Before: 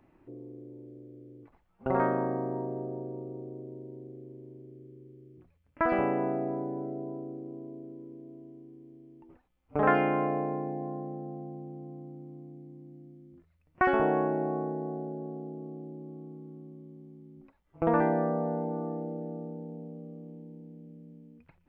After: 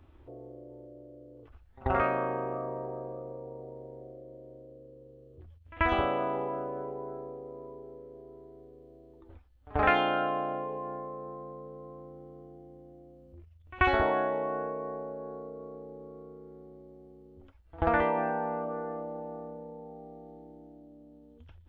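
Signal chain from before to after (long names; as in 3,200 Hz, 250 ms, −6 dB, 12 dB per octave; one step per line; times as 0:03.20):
low shelf with overshoot 110 Hz +11.5 dB, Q 3
echo ahead of the sound 86 ms −23 dB
formants moved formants +5 semitones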